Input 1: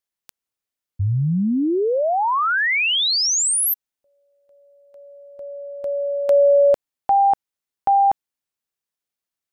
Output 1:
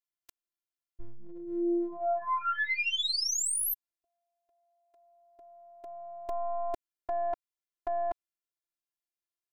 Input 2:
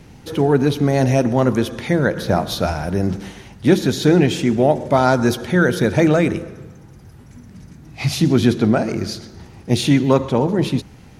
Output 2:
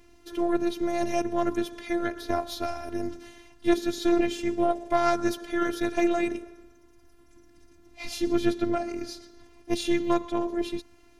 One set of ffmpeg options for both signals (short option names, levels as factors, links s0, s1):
-af "aeval=exprs='0.891*(cos(1*acos(clip(val(0)/0.891,-1,1)))-cos(1*PI/2))+0.398*(cos(2*acos(clip(val(0)/0.891,-1,1)))-cos(2*PI/2))+0.0251*(cos(4*acos(clip(val(0)/0.891,-1,1)))-cos(4*PI/2))':c=same,afftfilt=real='hypot(re,im)*cos(PI*b)':imag='0':win_size=512:overlap=0.75,volume=0.422"